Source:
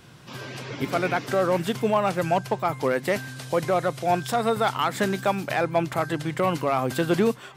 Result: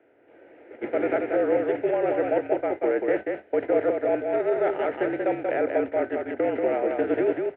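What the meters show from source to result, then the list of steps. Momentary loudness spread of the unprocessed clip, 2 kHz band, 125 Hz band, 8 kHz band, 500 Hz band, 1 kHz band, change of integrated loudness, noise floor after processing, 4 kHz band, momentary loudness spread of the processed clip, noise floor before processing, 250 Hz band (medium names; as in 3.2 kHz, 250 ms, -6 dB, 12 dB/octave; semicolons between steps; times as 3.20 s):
5 LU, -4.0 dB, -16.0 dB, under -40 dB, +2.0 dB, -6.5 dB, -0.5 dB, -55 dBFS, under -15 dB, 4 LU, -45 dBFS, -1.0 dB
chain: spectral levelling over time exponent 0.6; gate -23 dBFS, range -18 dB; mistuned SSB -51 Hz 260–2200 Hz; static phaser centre 450 Hz, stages 4; on a send: delay 185 ms -4 dB; on the sum: trim -1.5 dB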